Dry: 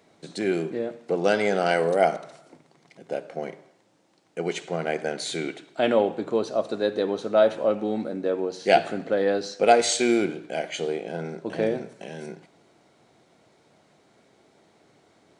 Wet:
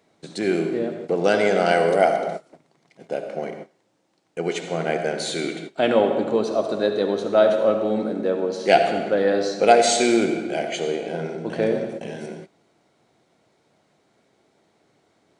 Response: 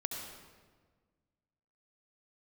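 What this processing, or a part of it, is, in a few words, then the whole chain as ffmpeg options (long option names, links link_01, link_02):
keyed gated reverb: -filter_complex "[0:a]asplit=3[link_01][link_02][link_03];[1:a]atrim=start_sample=2205[link_04];[link_02][link_04]afir=irnorm=-1:irlink=0[link_05];[link_03]apad=whole_len=679039[link_06];[link_05][link_06]sidechaingate=range=-33dB:threshold=-46dB:ratio=16:detection=peak,volume=2dB[link_07];[link_01][link_07]amix=inputs=2:normalize=0,volume=-4dB"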